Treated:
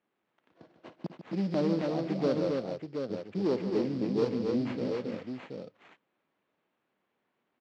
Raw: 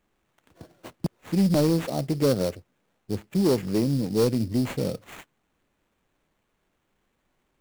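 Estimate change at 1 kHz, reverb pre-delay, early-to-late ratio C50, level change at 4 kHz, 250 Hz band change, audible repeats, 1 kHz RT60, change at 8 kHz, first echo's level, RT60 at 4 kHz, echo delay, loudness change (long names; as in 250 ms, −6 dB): −4.0 dB, no reverb audible, no reverb audible, −9.5 dB, −6.0 dB, 4, no reverb audible, below −15 dB, −15.0 dB, no reverb audible, 55 ms, −6.5 dB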